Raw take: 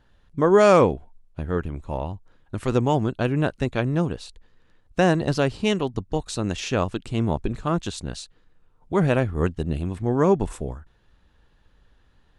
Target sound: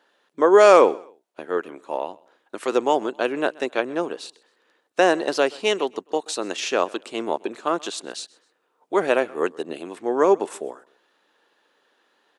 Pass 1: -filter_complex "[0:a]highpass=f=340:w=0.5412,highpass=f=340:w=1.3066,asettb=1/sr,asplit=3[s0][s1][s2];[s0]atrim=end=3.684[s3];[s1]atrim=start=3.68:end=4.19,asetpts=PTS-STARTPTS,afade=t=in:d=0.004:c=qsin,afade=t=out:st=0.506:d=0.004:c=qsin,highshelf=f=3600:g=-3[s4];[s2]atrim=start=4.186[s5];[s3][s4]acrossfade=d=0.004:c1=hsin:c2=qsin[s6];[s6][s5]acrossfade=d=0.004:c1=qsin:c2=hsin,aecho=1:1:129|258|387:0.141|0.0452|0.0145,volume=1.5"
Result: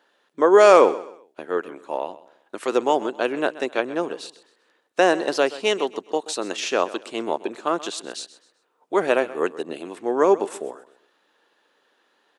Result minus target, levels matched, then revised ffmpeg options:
echo-to-direct +6.5 dB
-filter_complex "[0:a]highpass=f=340:w=0.5412,highpass=f=340:w=1.3066,asettb=1/sr,asplit=3[s0][s1][s2];[s0]atrim=end=3.684[s3];[s1]atrim=start=3.68:end=4.19,asetpts=PTS-STARTPTS,afade=t=in:d=0.004:c=qsin,afade=t=out:st=0.506:d=0.004:c=qsin,highshelf=f=3600:g=-3[s4];[s2]atrim=start=4.186[s5];[s3][s4]acrossfade=d=0.004:c1=hsin:c2=qsin[s6];[s6][s5]acrossfade=d=0.004:c1=qsin:c2=hsin,aecho=1:1:129|258:0.0668|0.0214,volume=1.5"

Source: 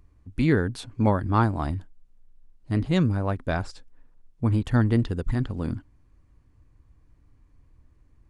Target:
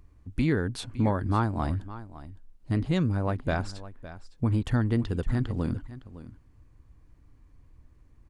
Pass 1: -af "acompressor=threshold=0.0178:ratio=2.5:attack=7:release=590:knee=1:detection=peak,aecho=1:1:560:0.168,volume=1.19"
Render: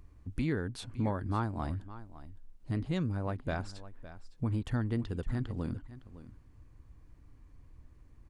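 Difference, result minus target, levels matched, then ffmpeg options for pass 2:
compression: peak gain reduction +7 dB
-af "acompressor=threshold=0.0668:ratio=2.5:attack=7:release=590:knee=1:detection=peak,aecho=1:1:560:0.168,volume=1.19"

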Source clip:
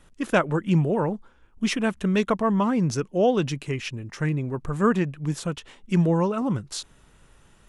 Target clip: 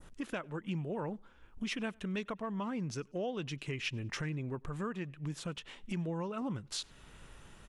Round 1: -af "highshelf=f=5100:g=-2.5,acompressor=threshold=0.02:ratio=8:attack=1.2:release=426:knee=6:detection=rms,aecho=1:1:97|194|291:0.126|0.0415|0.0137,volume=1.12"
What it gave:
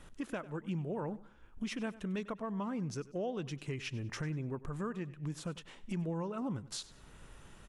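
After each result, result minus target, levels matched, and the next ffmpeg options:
echo-to-direct +11 dB; 4 kHz band -4.0 dB
-af "highshelf=f=5100:g=-2.5,acompressor=threshold=0.02:ratio=8:attack=1.2:release=426:knee=6:detection=rms,aecho=1:1:97|194:0.0355|0.0117,volume=1.12"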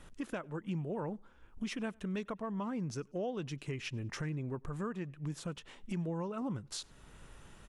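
4 kHz band -4.0 dB
-af "highshelf=f=5100:g=-2.5,acompressor=threshold=0.02:ratio=8:attack=1.2:release=426:knee=6:detection=rms,adynamicequalizer=threshold=0.00126:dfrequency=2900:dqfactor=0.83:tfrequency=2900:tqfactor=0.83:attack=5:release=100:ratio=0.375:range=3:mode=boostabove:tftype=bell,aecho=1:1:97|194:0.0355|0.0117,volume=1.12"

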